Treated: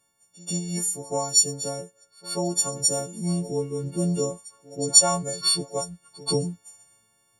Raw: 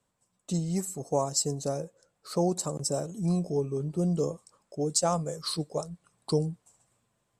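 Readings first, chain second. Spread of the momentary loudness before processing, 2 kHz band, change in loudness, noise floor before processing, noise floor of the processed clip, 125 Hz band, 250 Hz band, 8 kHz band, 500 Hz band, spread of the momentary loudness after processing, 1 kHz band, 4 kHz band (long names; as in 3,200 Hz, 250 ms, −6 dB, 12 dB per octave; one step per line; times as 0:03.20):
10 LU, +6.5 dB, +6.5 dB, −77 dBFS, −66 dBFS, +0.5 dB, +1.0 dB, +12.0 dB, +1.0 dB, 18 LU, +2.5 dB, +11.5 dB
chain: every partial snapped to a pitch grid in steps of 4 semitones
echo ahead of the sound 134 ms −20 dB
speech leveller within 4 dB 2 s
level −1 dB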